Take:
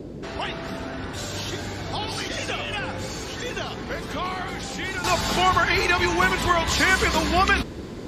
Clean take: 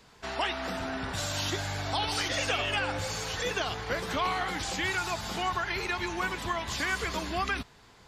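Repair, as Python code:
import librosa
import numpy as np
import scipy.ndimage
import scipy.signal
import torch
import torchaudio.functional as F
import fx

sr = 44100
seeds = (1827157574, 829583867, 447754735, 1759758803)

y = fx.noise_reduce(x, sr, print_start_s=7.56, print_end_s=8.06, reduce_db=6.0)
y = fx.fix_level(y, sr, at_s=5.04, step_db=-11.0)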